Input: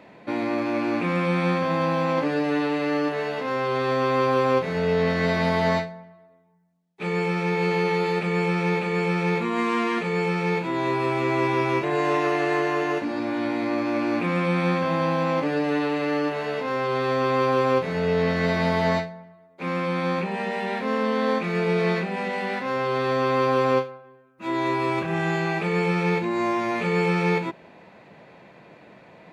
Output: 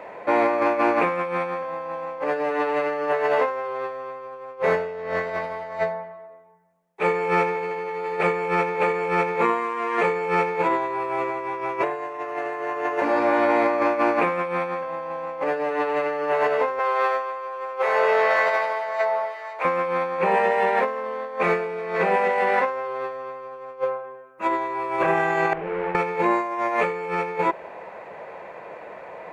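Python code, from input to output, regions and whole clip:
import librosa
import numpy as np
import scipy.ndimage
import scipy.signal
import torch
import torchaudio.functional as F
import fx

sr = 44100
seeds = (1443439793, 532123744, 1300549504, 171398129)

y = fx.chain(x, sr, fx.highpass(hz=680.0, slope=12),
    fx.echo_alternate(ms=265, hz=1300.0, feedback_pct=52, wet_db=-12.0), at=(16.79, 19.65))
y = fx.chain(y, sr, fx.median_filter(points=41),
    fx.ladder_lowpass(hz=3100.0, resonance_pct=40),
    fx.doubler(ms=49.0, db=-6.5), at=(25.53, 25.95))
y = fx.graphic_eq(y, sr, hz=(125, 250, 500, 1000, 2000, 4000), db=(-9, -9, 9, 7, 4, -8))
y = fx.over_compress(y, sr, threshold_db=-23.0, ratio=-0.5)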